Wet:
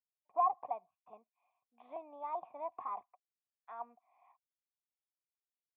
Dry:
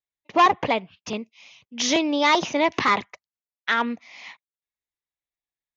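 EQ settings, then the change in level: cascade formant filter a; bass shelf 320 Hz -7.5 dB; -7.0 dB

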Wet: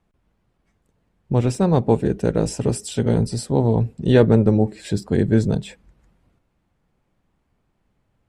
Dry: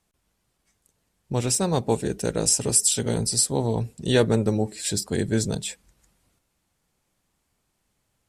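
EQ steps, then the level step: tone controls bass +4 dB, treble -10 dB; tilt EQ -2.5 dB/octave; bass shelf 160 Hz -11.5 dB; +3.5 dB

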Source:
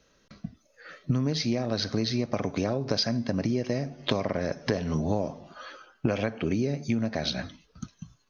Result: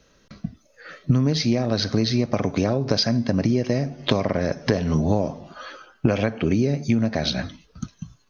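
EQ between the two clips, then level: bass shelf 220 Hz +3.5 dB; +5.0 dB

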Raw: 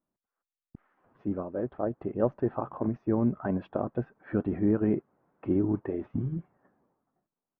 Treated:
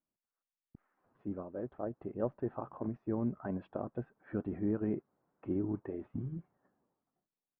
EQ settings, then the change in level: distance through air 92 m; -8.0 dB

